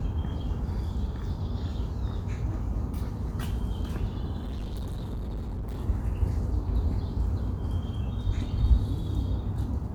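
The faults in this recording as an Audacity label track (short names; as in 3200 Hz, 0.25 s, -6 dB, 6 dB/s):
4.410000	5.780000	clipped -30.5 dBFS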